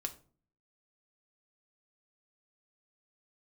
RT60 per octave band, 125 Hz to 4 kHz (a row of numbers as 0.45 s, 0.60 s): 0.70 s, 0.65 s, 0.50 s, 0.40 s, 0.30 s, 0.25 s